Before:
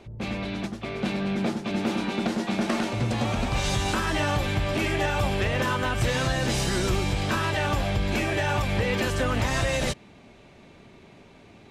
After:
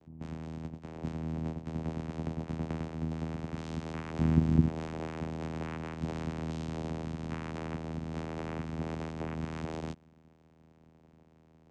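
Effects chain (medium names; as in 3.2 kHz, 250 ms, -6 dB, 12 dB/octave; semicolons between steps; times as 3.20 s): 4.18–4.68 s: tone controls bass +15 dB, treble +1 dB; vocoder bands 4, saw 80.2 Hz; trim -9 dB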